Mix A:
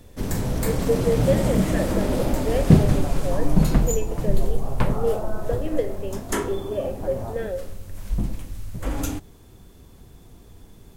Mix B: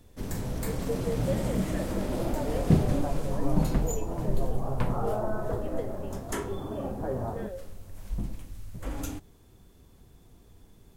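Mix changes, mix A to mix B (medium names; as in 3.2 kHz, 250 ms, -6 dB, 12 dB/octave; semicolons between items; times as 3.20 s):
speech -11.0 dB; first sound -8.0 dB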